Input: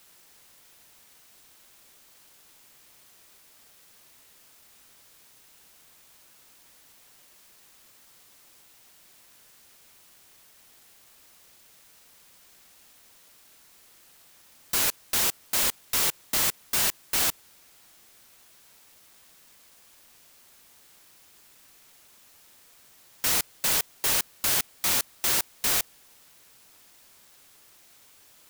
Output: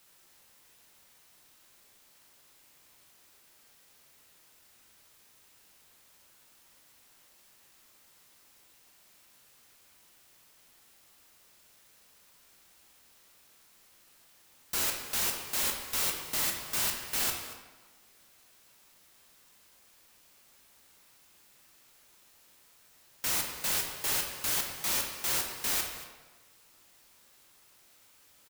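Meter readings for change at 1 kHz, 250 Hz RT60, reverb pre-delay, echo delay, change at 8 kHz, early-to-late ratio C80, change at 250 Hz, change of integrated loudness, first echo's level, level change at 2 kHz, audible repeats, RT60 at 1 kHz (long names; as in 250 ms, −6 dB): −4.5 dB, 1.2 s, 14 ms, 231 ms, −5.5 dB, 6.0 dB, −4.5 dB, −5.5 dB, −16.0 dB, −4.5 dB, 1, 1.3 s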